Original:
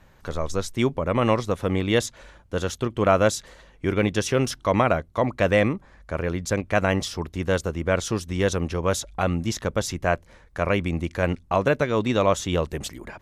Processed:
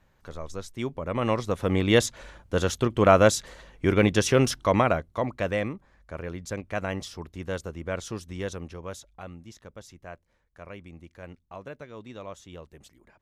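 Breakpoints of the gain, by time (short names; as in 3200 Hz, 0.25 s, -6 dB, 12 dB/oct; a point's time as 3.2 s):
0.75 s -10 dB
1.93 s +1.5 dB
4.46 s +1.5 dB
5.66 s -9 dB
8.3 s -9 dB
9.47 s -20 dB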